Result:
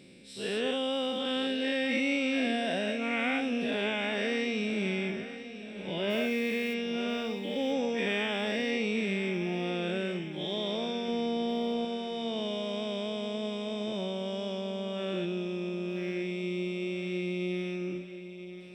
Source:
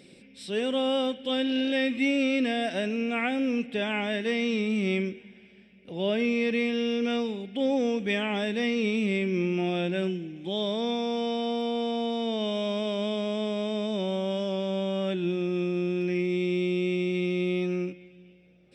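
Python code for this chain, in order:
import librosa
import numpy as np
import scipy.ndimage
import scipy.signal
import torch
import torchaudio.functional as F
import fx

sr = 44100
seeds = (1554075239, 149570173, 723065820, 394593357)

y = fx.spec_dilate(x, sr, span_ms=240)
y = fx.quant_dither(y, sr, seeds[0], bits=8, dither='triangular', at=(6.09, 6.73), fade=0.02)
y = fx.low_shelf(y, sr, hz=490.0, db=7.5, at=(11.08, 11.85))
y = fx.echo_feedback(y, sr, ms=984, feedback_pct=53, wet_db=-13)
y = y * librosa.db_to_amplitude(-7.5)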